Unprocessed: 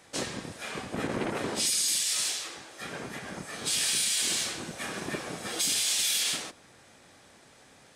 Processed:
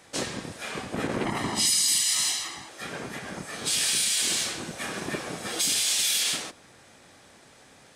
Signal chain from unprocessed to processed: 1.25–2.69 s: comb 1 ms, depth 70%; trim +2.5 dB

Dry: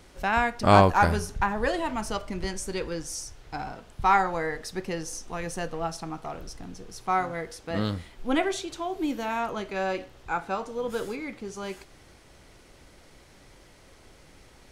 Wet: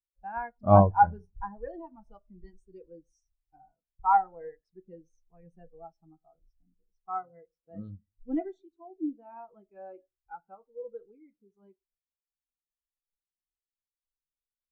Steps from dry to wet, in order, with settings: on a send at -14.5 dB: reverberation RT60 0.75 s, pre-delay 6 ms; on the sum: spectral contrast expander 2.5:1; trim -2 dB

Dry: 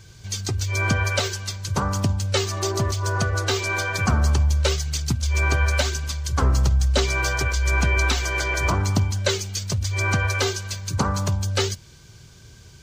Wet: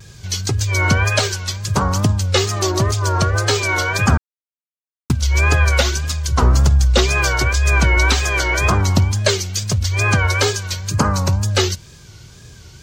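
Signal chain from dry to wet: 4.18–5.10 s: mute; 10.94–11.44 s: band-stop 3.4 kHz, Q 6; wow and flutter 110 cents; trim +6 dB

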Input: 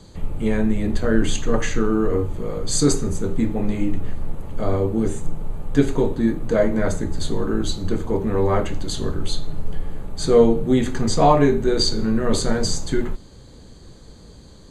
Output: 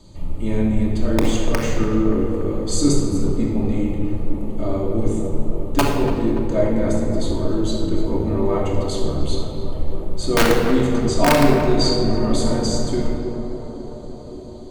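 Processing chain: peaking EQ 1.6 kHz -10 dB 0.44 oct; integer overflow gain 5.5 dB; on a send: tape echo 289 ms, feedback 88%, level -9 dB, low-pass 1.8 kHz; on the sum: simulated room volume 2600 m³, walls mixed, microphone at 2.7 m; trim -4.5 dB

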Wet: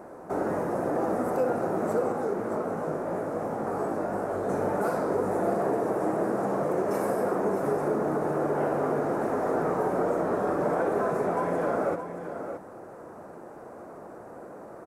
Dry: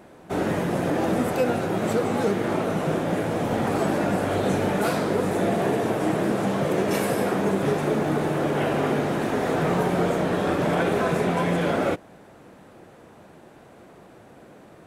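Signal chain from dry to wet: FFT filter 150 Hz 0 dB, 480 Hz +9 dB, 1.3 kHz +8 dB, 3.3 kHz -14 dB, 5.2 kHz -2 dB, 9.3 kHz +1 dB; compression 1.5:1, threshold -38 dBFS, peak gain reduction 10 dB; 2.12–4.49 s: chorus 2.8 Hz, delay 16.5 ms, depth 6.2 ms; multi-tap echo 60/623 ms -10.5/-9 dB; trim -2.5 dB

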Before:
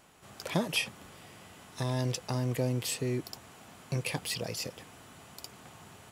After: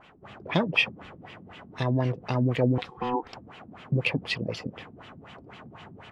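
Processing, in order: LFO low-pass sine 4 Hz 220–3200 Hz; 2.78–3.33 s: ring modulator 620 Hz; trim +4.5 dB

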